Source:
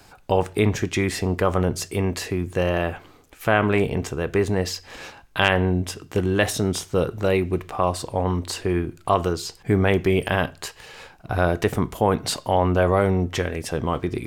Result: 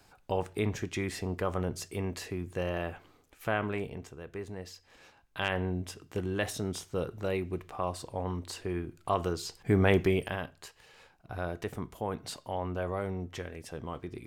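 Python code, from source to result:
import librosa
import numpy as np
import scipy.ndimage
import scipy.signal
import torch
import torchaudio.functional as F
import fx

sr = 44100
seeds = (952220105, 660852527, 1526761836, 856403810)

y = fx.gain(x, sr, db=fx.line((3.5, -11.0), (4.14, -19.0), (5.01, -19.0), (5.56, -11.5), (8.81, -11.5), (10.0, -4.0), (10.41, -15.0)))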